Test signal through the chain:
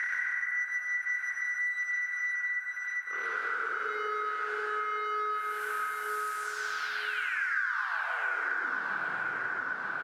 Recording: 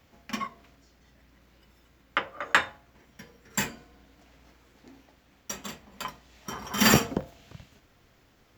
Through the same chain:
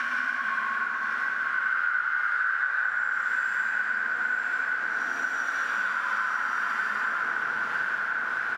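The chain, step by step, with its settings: reverse spectral sustain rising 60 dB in 1.20 s; flange 0.95 Hz, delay 8.1 ms, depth 1.3 ms, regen +22%; reverse; compression 6:1, threshold -40 dBFS; reverse; waveshaping leveller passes 1; fuzz box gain 55 dB, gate -59 dBFS; tremolo 1.8 Hz, depth 86%; hard clipper -23.5 dBFS; band-pass filter 1.5 kHz, Q 15; on a send: feedback delay 940 ms, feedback 28%, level -8.5 dB; on the sum: plate-style reverb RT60 3.4 s, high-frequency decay 0.35×, pre-delay 95 ms, DRR -8.5 dB; three bands compressed up and down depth 100%; trim +3.5 dB

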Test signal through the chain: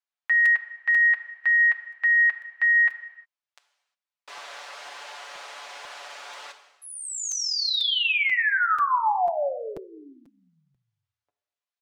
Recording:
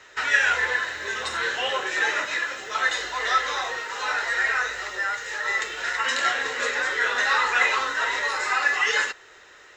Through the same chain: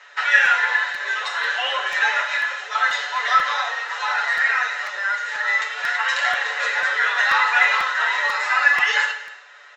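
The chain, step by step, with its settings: high-pass 620 Hz 24 dB/octave; distance through air 110 m; comb 7 ms, depth 59%; gated-style reverb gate 380 ms falling, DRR 8 dB; crackling interface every 0.49 s, samples 256, repeat, from 0.45 s; trim +3 dB

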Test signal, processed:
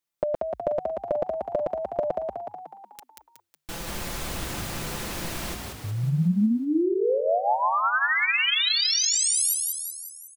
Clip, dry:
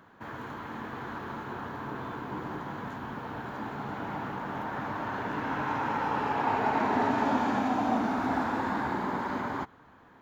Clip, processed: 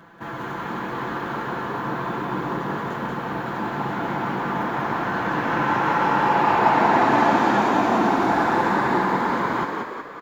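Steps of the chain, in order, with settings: comb 5.9 ms, depth 69%; frequency-shifting echo 184 ms, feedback 54%, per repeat +48 Hz, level -3.5 dB; trim +6.5 dB

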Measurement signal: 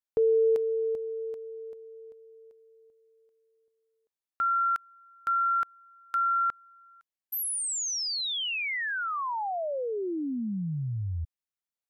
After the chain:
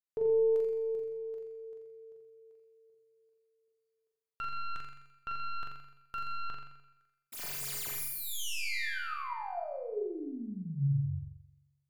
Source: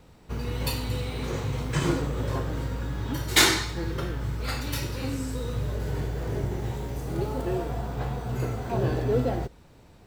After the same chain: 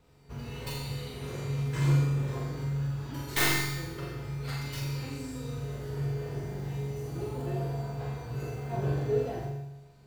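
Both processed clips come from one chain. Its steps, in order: tracing distortion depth 0.21 ms; feedback comb 140 Hz, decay 1.1 s, harmonics odd, mix 90%; flutter echo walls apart 7.3 m, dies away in 0.79 s; trim +8 dB

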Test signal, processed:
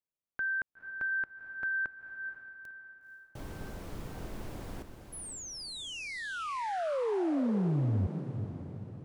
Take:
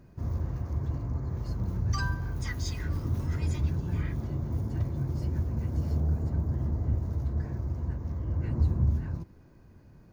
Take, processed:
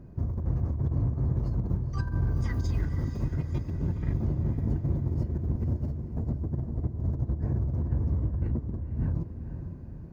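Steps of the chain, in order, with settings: tilt shelf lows +7.5 dB, about 1.1 kHz; compressor with a negative ratio -25 dBFS, ratio -0.5; echo that smears into a reverb 489 ms, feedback 48%, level -8.5 dB; trim -3.5 dB

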